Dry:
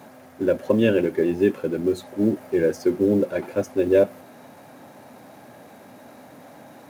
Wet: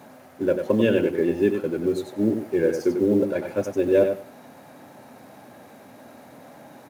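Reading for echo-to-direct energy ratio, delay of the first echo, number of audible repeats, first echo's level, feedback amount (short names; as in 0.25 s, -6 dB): -7.0 dB, 95 ms, 2, -7.0 dB, 16%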